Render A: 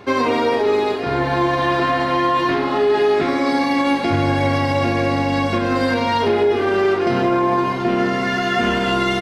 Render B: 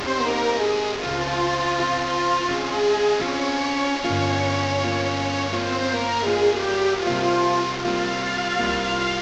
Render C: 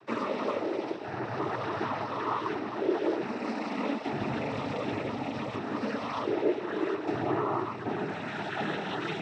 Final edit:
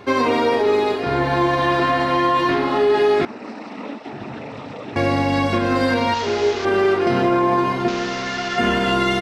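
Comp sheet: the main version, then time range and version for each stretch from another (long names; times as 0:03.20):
A
0:03.25–0:04.96: punch in from C
0:06.14–0:06.65: punch in from B
0:07.88–0:08.58: punch in from B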